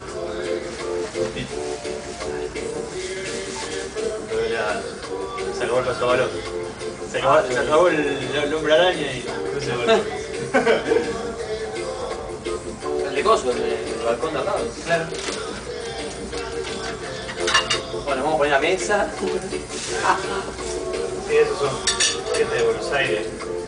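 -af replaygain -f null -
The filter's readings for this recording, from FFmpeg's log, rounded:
track_gain = +1.5 dB
track_peak = 0.414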